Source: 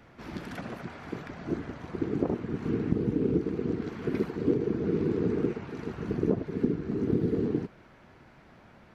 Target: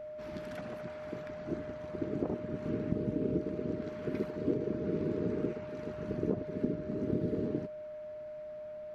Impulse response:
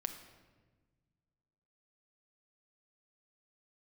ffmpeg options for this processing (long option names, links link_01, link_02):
-af "aeval=exprs='val(0)+0.0178*sin(2*PI*610*n/s)':channel_layout=same,volume=-6dB"